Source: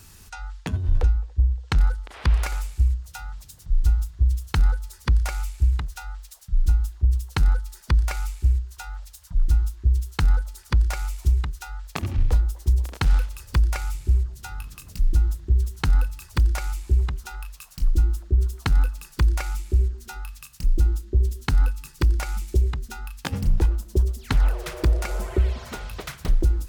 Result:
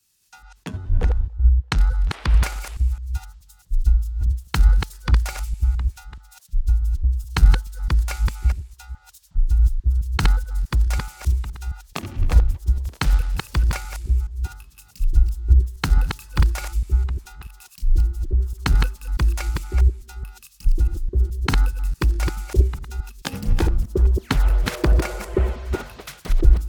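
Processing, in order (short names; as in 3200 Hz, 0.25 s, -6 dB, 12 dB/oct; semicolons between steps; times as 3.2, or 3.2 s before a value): reverse delay 0.213 s, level -3 dB; three-band expander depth 100%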